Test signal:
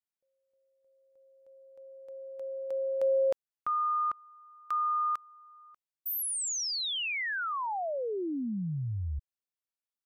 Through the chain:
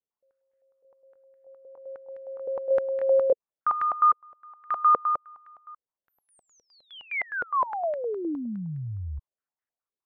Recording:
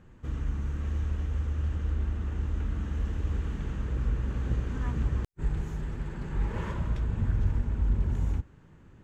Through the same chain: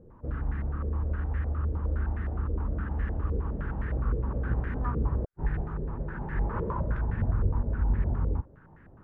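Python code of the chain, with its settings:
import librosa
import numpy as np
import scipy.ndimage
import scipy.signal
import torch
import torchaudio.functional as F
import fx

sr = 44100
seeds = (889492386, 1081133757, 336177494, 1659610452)

y = fx.filter_held_lowpass(x, sr, hz=9.7, low_hz=480.0, high_hz=1800.0)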